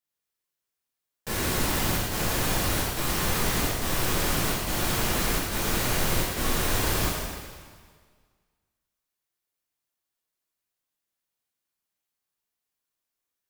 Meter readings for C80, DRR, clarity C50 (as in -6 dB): 1.0 dB, -7.0 dB, -1.0 dB